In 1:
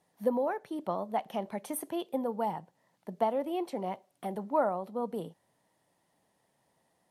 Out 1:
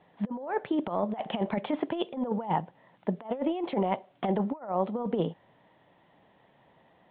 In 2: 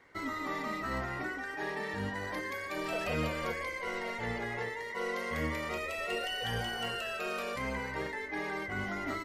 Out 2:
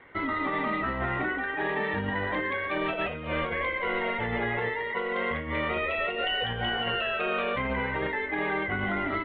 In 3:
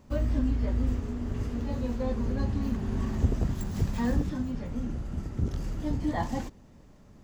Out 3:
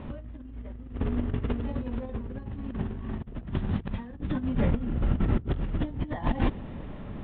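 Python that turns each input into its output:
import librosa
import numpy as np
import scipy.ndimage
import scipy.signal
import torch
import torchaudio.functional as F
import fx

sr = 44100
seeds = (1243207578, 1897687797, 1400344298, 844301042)

y = scipy.signal.sosfilt(scipy.signal.butter(12, 3600.0, 'lowpass', fs=sr, output='sos'), x)
y = fx.over_compress(y, sr, threshold_db=-36.0, ratio=-0.5)
y = y * librosa.db_to_amplitude(7.5)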